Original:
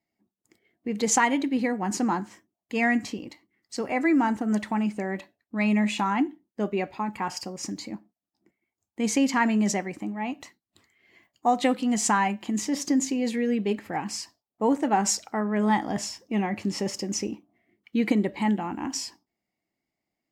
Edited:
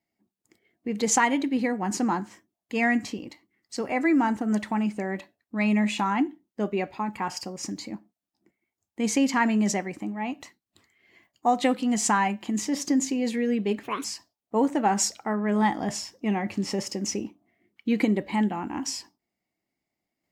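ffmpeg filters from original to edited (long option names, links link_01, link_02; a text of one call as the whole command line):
ffmpeg -i in.wav -filter_complex "[0:a]asplit=3[link_01][link_02][link_03];[link_01]atrim=end=13.834[link_04];[link_02]atrim=start=13.83:end=14.12,asetpts=PTS-STARTPTS,asetrate=59535,aresample=44100,atrim=end_sample=9473,asetpts=PTS-STARTPTS[link_05];[link_03]atrim=start=14.116[link_06];[link_04][link_05]acrossfade=duration=0.004:curve1=hsin:curve2=hsin[link_07];[link_07][link_06]acrossfade=duration=0.004:curve1=hsin:curve2=hsin" out.wav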